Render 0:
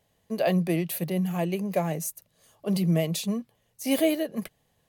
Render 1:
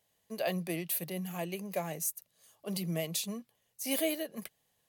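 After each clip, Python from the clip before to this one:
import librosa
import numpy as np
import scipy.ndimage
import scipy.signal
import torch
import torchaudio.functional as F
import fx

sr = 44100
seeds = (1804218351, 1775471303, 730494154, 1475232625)

y = fx.tilt_eq(x, sr, slope=2.0)
y = y * 10.0 ** (-7.0 / 20.0)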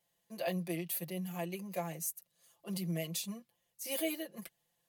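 y = x + 0.99 * np.pad(x, (int(5.8 * sr / 1000.0), 0))[:len(x)]
y = y * 10.0 ** (-7.0 / 20.0)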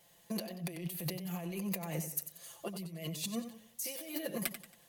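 y = fx.over_compress(x, sr, threshold_db=-48.0, ratio=-1.0)
y = fx.echo_warbled(y, sr, ms=92, feedback_pct=38, rate_hz=2.8, cents=92, wet_db=-10)
y = y * 10.0 ** (7.0 / 20.0)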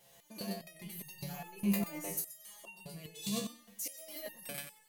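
y = x + 10.0 ** (-4.5 / 20.0) * np.pad(x, (int(125 * sr / 1000.0), 0))[:len(x)]
y = fx.resonator_held(y, sr, hz=4.9, low_hz=68.0, high_hz=910.0)
y = y * 10.0 ** (10.0 / 20.0)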